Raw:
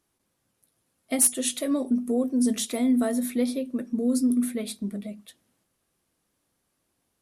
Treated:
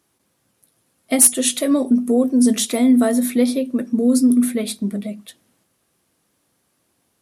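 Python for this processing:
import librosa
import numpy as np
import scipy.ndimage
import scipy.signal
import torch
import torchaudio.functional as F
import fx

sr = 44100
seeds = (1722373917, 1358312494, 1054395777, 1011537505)

y = scipy.signal.sosfilt(scipy.signal.butter(2, 77.0, 'highpass', fs=sr, output='sos'), x)
y = F.gain(torch.from_numpy(y), 8.5).numpy()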